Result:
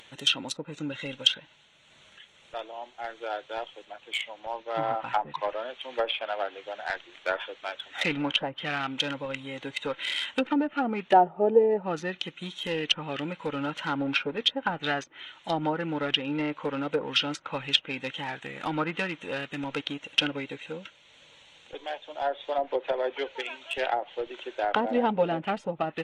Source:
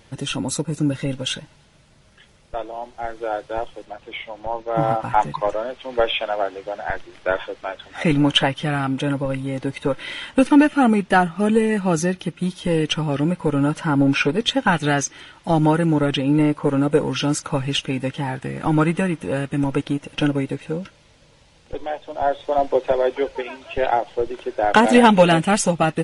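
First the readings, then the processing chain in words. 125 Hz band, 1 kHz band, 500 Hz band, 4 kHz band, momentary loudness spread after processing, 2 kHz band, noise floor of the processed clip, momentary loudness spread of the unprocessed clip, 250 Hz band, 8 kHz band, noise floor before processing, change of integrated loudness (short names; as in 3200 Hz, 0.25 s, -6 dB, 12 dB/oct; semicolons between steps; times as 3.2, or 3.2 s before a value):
-17.5 dB, -7.5 dB, -8.0 dB, -1.5 dB, 12 LU, -7.0 dB, -58 dBFS, 14 LU, -13.5 dB, -14.0 dB, -53 dBFS, -8.5 dB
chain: Wiener smoothing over 9 samples; spectral gain 11.13–11.83, 350–960 Hz +11 dB; RIAA curve recording; treble ducked by the level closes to 690 Hz, closed at -14 dBFS; bell 3600 Hz +12.5 dB 1.4 oct; upward compressor, threshold -40 dBFS; gain -7.5 dB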